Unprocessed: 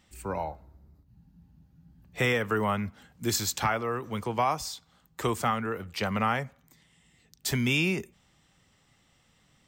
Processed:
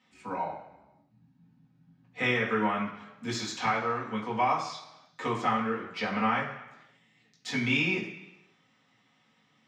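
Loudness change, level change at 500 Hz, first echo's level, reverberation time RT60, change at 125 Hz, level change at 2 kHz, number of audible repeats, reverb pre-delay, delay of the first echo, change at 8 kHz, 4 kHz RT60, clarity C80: -0.5 dB, -2.0 dB, no echo, 1.0 s, -5.5 dB, +1.0 dB, no echo, 3 ms, no echo, -10.5 dB, 1.0 s, 9.0 dB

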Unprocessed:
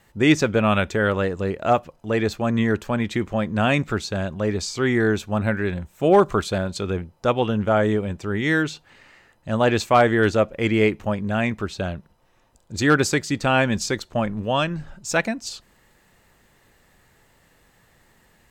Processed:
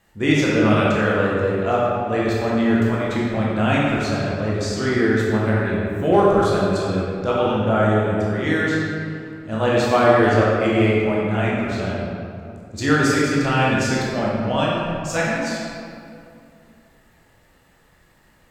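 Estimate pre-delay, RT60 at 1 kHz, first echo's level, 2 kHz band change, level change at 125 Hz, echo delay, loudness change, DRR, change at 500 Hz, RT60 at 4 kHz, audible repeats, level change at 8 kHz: 15 ms, 2.4 s, no echo, +1.5 dB, +3.0 dB, no echo, +2.5 dB, -6.0 dB, +2.5 dB, 1.4 s, no echo, -1.0 dB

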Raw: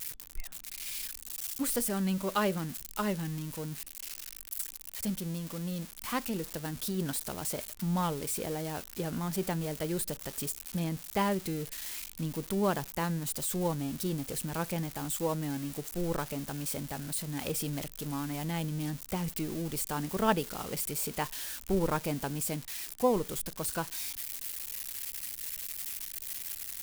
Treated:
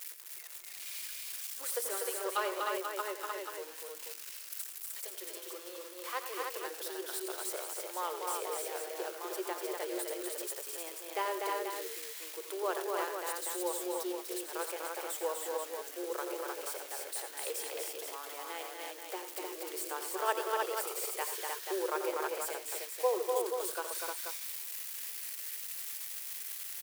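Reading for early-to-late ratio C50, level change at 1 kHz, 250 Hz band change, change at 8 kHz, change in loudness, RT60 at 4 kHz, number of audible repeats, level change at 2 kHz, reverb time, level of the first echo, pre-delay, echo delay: no reverb, -0.5 dB, -13.0 dB, -2.0 dB, -3.0 dB, no reverb, 4, 0.0 dB, no reverb, -11.0 dB, no reverb, 87 ms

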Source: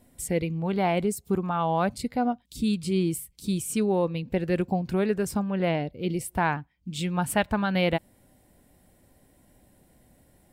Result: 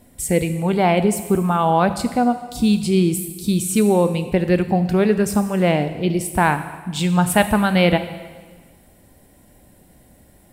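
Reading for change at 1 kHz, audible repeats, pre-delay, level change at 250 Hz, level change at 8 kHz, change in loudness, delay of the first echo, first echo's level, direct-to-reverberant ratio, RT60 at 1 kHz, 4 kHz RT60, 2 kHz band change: +8.5 dB, no echo, 4 ms, +9.0 dB, +9.0 dB, +8.5 dB, no echo, no echo, 10.0 dB, 1.5 s, 1.4 s, +8.5 dB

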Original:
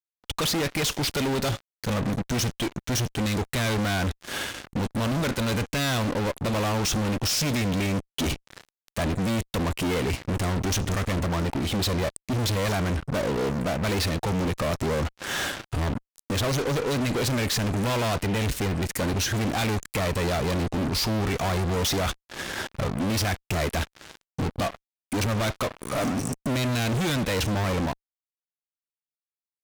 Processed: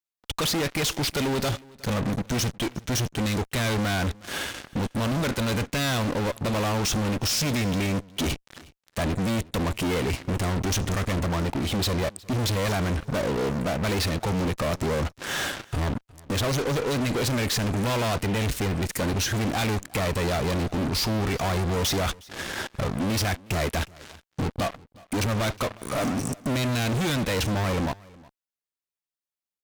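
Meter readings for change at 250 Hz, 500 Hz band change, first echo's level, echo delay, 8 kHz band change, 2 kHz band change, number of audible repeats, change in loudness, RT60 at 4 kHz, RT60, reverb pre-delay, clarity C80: 0.0 dB, 0.0 dB, -23.5 dB, 363 ms, 0.0 dB, 0.0 dB, 1, 0.0 dB, no reverb, no reverb, no reverb, no reverb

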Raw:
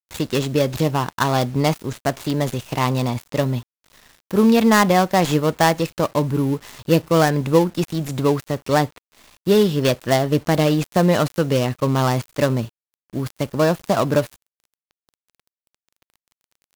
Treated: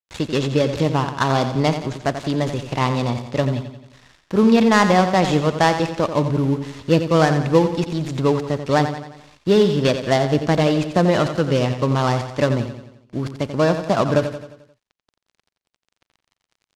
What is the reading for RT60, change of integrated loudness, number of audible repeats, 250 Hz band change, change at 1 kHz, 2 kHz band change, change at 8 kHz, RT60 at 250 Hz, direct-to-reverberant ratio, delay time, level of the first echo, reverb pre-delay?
no reverb, +0.5 dB, 5, +0.5 dB, +0.5 dB, +0.5 dB, -4.0 dB, no reverb, no reverb, 88 ms, -9.5 dB, no reverb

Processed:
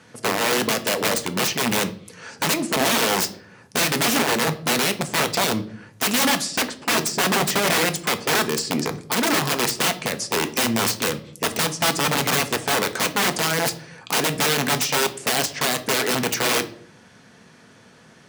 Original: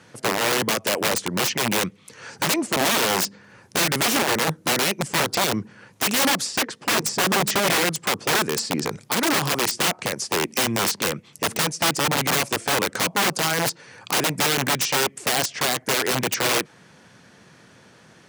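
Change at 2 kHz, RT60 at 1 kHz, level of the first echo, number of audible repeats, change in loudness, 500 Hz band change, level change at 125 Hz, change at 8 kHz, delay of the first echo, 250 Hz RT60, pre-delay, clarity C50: +0.5 dB, 0.45 s, no echo, no echo, +0.5 dB, +1.0 dB, +0.5 dB, +0.5 dB, no echo, 0.75 s, 4 ms, 16.0 dB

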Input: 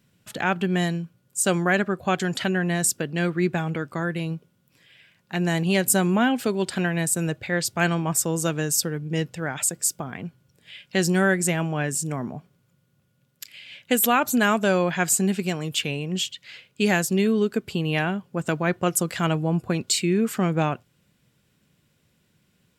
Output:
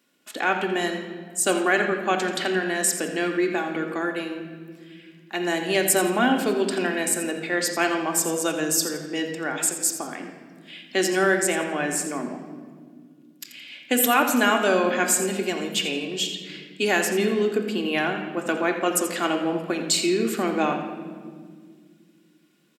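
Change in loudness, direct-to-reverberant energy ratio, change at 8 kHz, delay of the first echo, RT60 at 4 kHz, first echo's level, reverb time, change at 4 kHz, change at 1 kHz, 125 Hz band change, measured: 0.0 dB, 2.5 dB, +0.5 dB, 85 ms, 1.2 s, -13.0 dB, 1.9 s, +2.0 dB, +2.0 dB, -11.5 dB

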